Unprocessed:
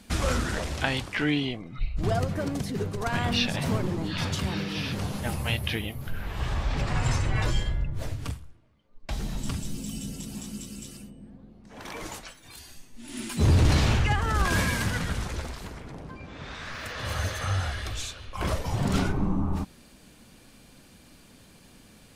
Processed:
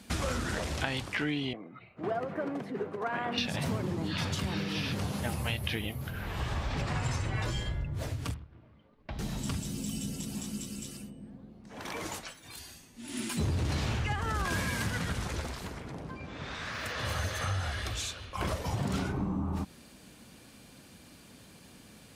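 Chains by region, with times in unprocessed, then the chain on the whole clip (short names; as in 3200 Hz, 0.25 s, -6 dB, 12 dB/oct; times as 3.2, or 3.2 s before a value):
1.53–3.38 HPF 110 Hz 24 dB/oct + three-band isolator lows -16 dB, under 250 Hz, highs -21 dB, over 2400 Hz + mismatched tape noise reduction decoder only
8.34–9.19 G.711 law mismatch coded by mu + compressor 1.5:1, threshold -40 dBFS + air absorption 310 m
whole clip: HPF 61 Hz; compressor 4:1, threshold -29 dBFS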